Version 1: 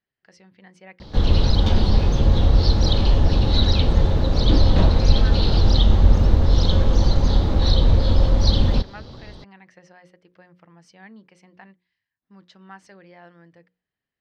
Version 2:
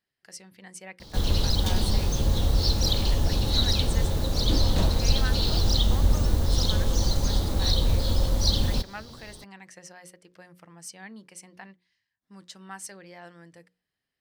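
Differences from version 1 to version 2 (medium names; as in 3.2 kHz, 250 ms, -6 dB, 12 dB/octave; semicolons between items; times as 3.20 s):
background -7.5 dB; master: remove distance through air 230 m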